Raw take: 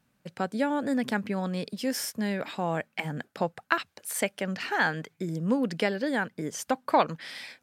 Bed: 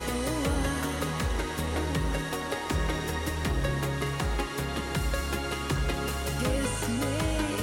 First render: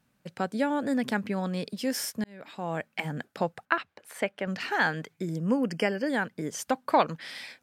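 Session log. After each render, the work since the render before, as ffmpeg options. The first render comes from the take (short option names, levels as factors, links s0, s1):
-filter_complex "[0:a]asettb=1/sr,asplit=3[s0][s1][s2];[s0]atrim=end=3.654[s3];[s1]atrim=start=3.65:end=4.47,asetpts=PTS-STARTPTS,afade=t=in:d=0.004:c=qsin,afade=t=out:st=0.816:d=0.004:c=qsin,bass=f=250:g=-4,treble=f=4000:g=-15[s4];[s2]atrim=start=4.466[s5];[s3][s4]acrossfade=d=0.004:c1=hsin:c2=qsin[s6];[s6][s5]acrossfade=d=0.004:c1=qsin:c2=hsin,asettb=1/sr,asplit=3[s7][s8][s9];[s7]atrim=end=5.404[s10];[s8]atrim=start=5.4:end=6.1,asetpts=PTS-STARTPTS,afade=t=in:d=0.004:c=qsin,afade=t=out:st=0.696:d=0.004:c=qsin,asuperstop=centerf=3800:order=12:qfactor=3[s11];[s9]atrim=start=6.096[s12];[s10][s11]acrossfade=d=0.004:c1=hsin:c2=qsin[s13];[s13][s12]acrossfade=d=0.004:c1=qsin:c2=hsin,asplit=2[s14][s15];[s14]atrim=end=2.24,asetpts=PTS-STARTPTS,afade=t=out:st=2.236:d=0.004:c=hsin[s16];[s15]atrim=start=2.24,asetpts=PTS-STARTPTS,afade=t=in:d=0.67[s17];[s16][s17]concat=n=2:v=0:a=1"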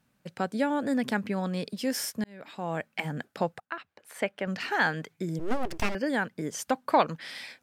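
-filter_complex "[0:a]asettb=1/sr,asplit=3[s0][s1][s2];[s0]atrim=end=5.394[s3];[s1]atrim=start=5.39:end=5.95,asetpts=PTS-STARTPTS,afade=t=in:d=0.004:c=qsin,afade=t=out:st=0.556:d=0.004:c=qsin,aeval=exprs='abs(val(0))':c=same[s4];[s2]atrim=start=5.946[s5];[s3][s4]acrossfade=d=0.004:c1=hsin:c2=qsin[s6];[s6][s5]acrossfade=d=0.004:c1=qsin:c2=hsin,asplit=2[s7][s8];[s7]atrim=end=3.6,asetpts=PTS-STARTPTS,afade=t=out:st=3.596:d=0.004:c=hsin:silence=0.125893[s9];[s8]atrim=start=3.6,asetpts=PTS-STARTPTS,afade=t=in:d=0.67:silence=0.125893[s10];[s9][s10]concat=n=2:v=0:a=1"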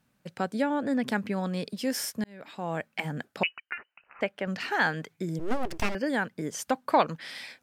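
-filter_complex "[0:a]asettb=1/sr,asplit=3[s0][s1][s2];[s0]atrim=end=0.624[s3];[s1]atrim=start=0.62:end=1.07,asetpts=PTS-STARTPTS,afade=t=in:d=0.004:c=qsin,afade=t=out:st=0.446:d=0.004:c=qsin,highshelf=f=6800:g=-11[s4];[s2]atrim=start=1.066[s5];[s3][s4]acrossfade=d=0.004:c1=hsin:c2=qsin[s6];[s6][s5]acrossfade=d=0.004:c1=qsin:c2=hsin,asettb=1/sr,asplit=3[s7][s8][s9];[s7]atrim=end=3.434[s10];[s8]atrim=start=3.43:end=4.21,asetpts=PTS-STARTPTS,afade=t=in:d=0.004:c=qsin,afade=t=out:st=0.776:d=0.004:c=qsin,lowpass=f=2600:t=q:w=0.5098,lowpass=f=2600:t=q:w=0.6013,lowpass=f=2600:t=q:w=0.9,lowpass=f=2600:t=q:w=2.563,afreqshift=-3100[s11];[s9]atrim=start=4.206[s12];[s10][s11]acrossfade=d=0.004:c1=hsin:c2=qsin[s13];[s13][s12]acrossfade=d=0.004:c1=qsin:c2=hsin"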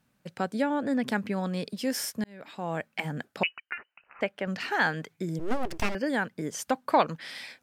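-af anull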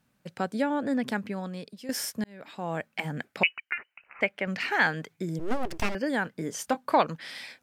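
-filter_complex "[0:a]asettb=1/sr,asplit=3[s0][s1][s2];[s0]atrim=end=3.144[s3];[s1]atrim=start=3.14:end=4.87,asetpts=PTS-STARTPTS,afade=t=in:d=0.004:c=qsin,afade=t=out:st=1.726:d=0.004:c=qsin,equalizer=f=2200:t=o:w=0.46:g=8.5[s4];[s2]atrim=start=4.866[s5];[s3][s4]acrossfade=d=0.004:c1=hsin:c2=qsin[s6];[s6][s5]acrossfade=d=0.004:c1=qsin:c2=hsin,asettb=1/sr,asplit=3[s7][s8][s9];[s7]atrim=end=6.234[s10];[s8]atrim=start=6.23:end=6.95,asetpts=PTS-STARTPTS,afade=t=in:d=0.004:c=qsin,afade=t=out:st=0.716:d=0.004:c=qsin,asplit=2[s11][s12];[s12]adelay=24,volume=0.251[s13];[s11][s13]amix=inputs=2:normalize=0,atrim=end_sample=31752[s14];[s9]atrim=start=6.946[s15];[s10][s14]acrossfade=d=0.004:c1=hsin:c2=qsin[s16];[s16][s15]acrossfade=d=0.004:c1=qsin:c2=hsin,asplit=2[s17][s18];[s17]atrim=end=1.89,asetpts=PTS-STARTPTS,afade=t=out:st=0.93:d=0.96:silence=0.223872[s19];[s18]atrim=start=1.89,asetpts=PTS-STARTPTS,afade=t=in:d=0.004:c=hsin:silence=0.223872[s20];[s19][s20]concat=n=2:v=0:a=1"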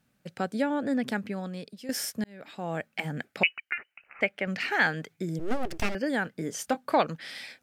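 -af "equalizer=f=1000:t=o:w=0.29:g=-6.5"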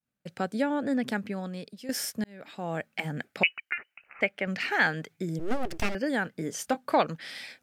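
-af "agate=range=0.0224:threshold=0.001:ratio=3:detection=peak"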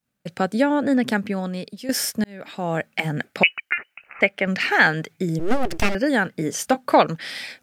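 -af "volume=2.66,alimiter=limit=0.794:level=0:latency=1"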